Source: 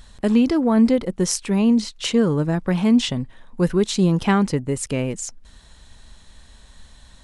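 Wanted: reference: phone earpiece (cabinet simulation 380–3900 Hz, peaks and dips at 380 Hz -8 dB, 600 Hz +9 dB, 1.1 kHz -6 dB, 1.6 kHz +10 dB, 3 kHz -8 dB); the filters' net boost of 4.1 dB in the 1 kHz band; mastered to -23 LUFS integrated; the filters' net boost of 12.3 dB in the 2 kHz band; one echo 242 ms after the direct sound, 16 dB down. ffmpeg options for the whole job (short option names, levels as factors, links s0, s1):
-af "highpass=380,equalizer=f=380:t=q:w=4:g=-8,equalizer=f=600:t=q:w=4:g=9,equalizer=f=1100:t=q:w=4:g=-6,equalizer=f=1600:t=q:w=4:g=10,equalizer=f=3000:t=q:w=4:g=-8,lowpass=f=3900:w=0.5412,lowpass=f=3900:w=1.3066,equalizer=f=1000:t=o:g=3.5,equalizer=f=2000:t=o:g=8,aecho=1:1:242:0.158,volume=0.944"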